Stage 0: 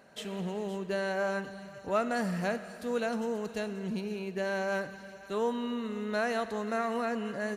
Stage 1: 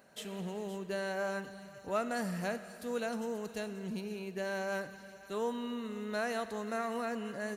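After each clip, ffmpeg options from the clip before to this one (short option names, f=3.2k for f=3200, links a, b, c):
-af "highshelf=f=8.3k:g=10.5,volume=-4.5dB"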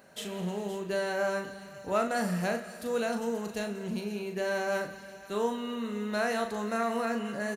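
-filter_complex "[0:a]asplit=2[a][b];[b]adelay=39,volume=-6dB[c];[a][c]amix=inputs=2:normalize=0,volume=4.5dB"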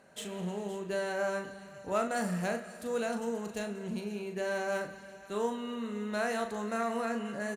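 -af "aexciter=amount=4:drive=2.5:freq=7k,adynamicsmooth=sensitivity=5:basefreq=5.9k,volume=-2.5dB"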